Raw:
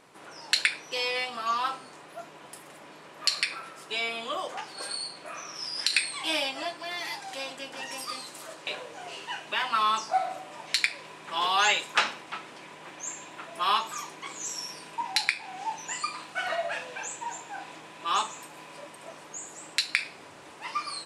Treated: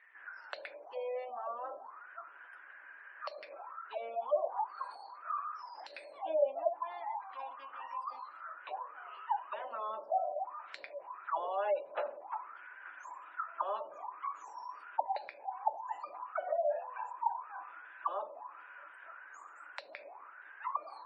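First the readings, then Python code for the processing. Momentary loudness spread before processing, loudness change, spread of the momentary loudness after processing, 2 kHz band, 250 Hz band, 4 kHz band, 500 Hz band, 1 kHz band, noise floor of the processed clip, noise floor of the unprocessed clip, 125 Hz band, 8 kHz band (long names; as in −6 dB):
19 LU, −9.5 dB, 16 LU, −17.5 dB, below −15 dB, −29.0 dB, +1.5 dB, −6.0 dB, −55 dBFS, −49 dBFS, below −35 dB, below −35 dB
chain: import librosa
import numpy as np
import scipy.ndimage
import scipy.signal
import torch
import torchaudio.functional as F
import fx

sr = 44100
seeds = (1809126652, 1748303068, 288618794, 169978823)

y = fx.auto_wah(x, sr, base_hz=580.0, top_hz=1900.0, q=13.0, full_db=-28.0, direction='down')
y = fx.spec_gate(y, sr, threshold_db=-30, keep='strong')
y = F.gain(torch.from_numpy(y), 10.0).numpy()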